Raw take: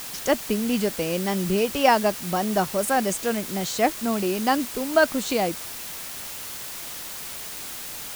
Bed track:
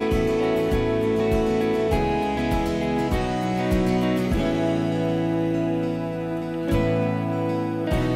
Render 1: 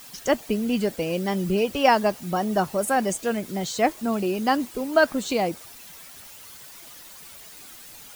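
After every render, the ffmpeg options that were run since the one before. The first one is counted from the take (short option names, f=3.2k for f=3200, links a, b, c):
-af "afftdn=nr=11:nf=-36"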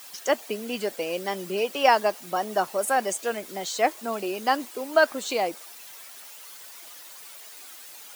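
-af "highpass=430"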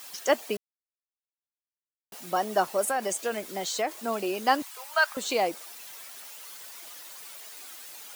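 -filter_complex "[0:a]asettb=1/sr,asplit=3[a][b][c];[a]atrim=end=2.874[d];[b]atrim=start=2.87:end=4.01,asetpts=PTS-STARTPTS,afade=t=in:d=0.004:c=qsin,afade=t=out:st=1.136:d=0.004:c=qsin,acompressor=threshold=-24dB:ratio=4:attack=3.2:release=140:knee=1:detection=peak[e];[c]atrim=start=4.006[f];[d][e]acrossfade=d=0.004:c1=hsin:c2=qsin[g];[g][f]acrossfade=d=0.004:c1=qsin:c2=hsin,asettb=1/sr,asplit=3[h][i][j];[h]atrim=end=4.624[k];[i]atrim=start=4.62:end=5.17,asetpts=PTS-STARTPTS,afade=t=in:d=0.004:c=qsin,afade=t=out:st=0.546:d=0.004:c=qsin,highpass=f=870:w=0.5412,highpass=f=870:w=1.3066[l];[j]atrim=start=5.166[m];[k][l]acrossfade=d=0.004:c1=hsin:c2=qsin[n];[n][m]acrossfade=d=0.004:c1=qsin:c2=hsin,asplit=3[o][p][q];[o]atrim=end=0.57,asetpts=PTS-STARTPTS,afade=t=out:st=0.566:d=0.004:c=hsin[r];[p]atrim=start=0.57:end=2.12,asetpts=PTS-STARTPTS,volume=0[s];[q]atrim=start=2.12,asetpts=PTS-STARTPTS,afade=t=in:d=0.004:c=hsin[t];[r][s][t]concat=n=3:v=0:a=1"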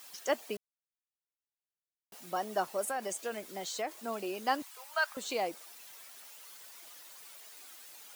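-af "volume=-7.5dB"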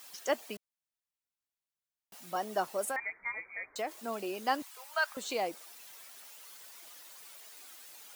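-filter_complex "[0:a]asettb=1/sr,asplit=3[a][b][c];[a]atrim=end=0.474[d];[b]atrim=start=0.47:end=2.35,asetpts=PTS-STARTPTS,afade=t=in:d=0.004:c=qsin,afade=t=out:st=1.876:d=0.004:c=qsin,equalizer=f=420:t=o:w=0.77:g=-6.5[e];[c]atrim=start=2.346[f];[d][e]acrossfade=d=0.004:c1=hsin:c2=qsin[g];[g][f]acrossfade=d=0.004:c1=qsin:c2=hsin,asettb=1/sr,asplit=3[h][i][j];[h]atrim=end=2.964[k];[i]atrim=start=2.96:end=3.76,asetpts=PTS-STARTPTS,afade=t=in:d=0.004:c=qsin,afade=t=out:st=0.796:d=0.004:c=qsin,lowpass=f=2.2k:t=q:w=0.5098,lowpass=f=2.2k:t=q:w=0.6013,lowpass=f=2.2k:t=q:w=0.9,lowpass=f=2.2k:t=q:w=2.563,afreqshift=-2600[l];[j]atrim=start=3.756[m];[k][l]acrossfade=d=0.004:c1=hsin:c2=qsin[n];[n][m]acrossfade=d=0.004:c1=qsin:c2=hsin"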